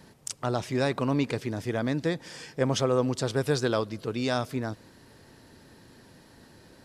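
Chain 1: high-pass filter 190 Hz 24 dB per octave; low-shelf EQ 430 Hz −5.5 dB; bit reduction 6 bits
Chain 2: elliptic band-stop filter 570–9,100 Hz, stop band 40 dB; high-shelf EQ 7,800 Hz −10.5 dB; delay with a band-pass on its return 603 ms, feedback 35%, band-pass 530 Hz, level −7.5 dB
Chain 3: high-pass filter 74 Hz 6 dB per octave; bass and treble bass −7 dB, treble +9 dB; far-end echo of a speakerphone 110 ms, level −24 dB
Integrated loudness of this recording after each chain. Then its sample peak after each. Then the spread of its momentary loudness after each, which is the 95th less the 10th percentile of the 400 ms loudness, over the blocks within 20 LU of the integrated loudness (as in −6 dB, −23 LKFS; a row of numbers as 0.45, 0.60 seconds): −31.5, −30.0, −29.5 LKFS; −13.0, −14.0, −5.5 dBFS; 10, 16, 9 LU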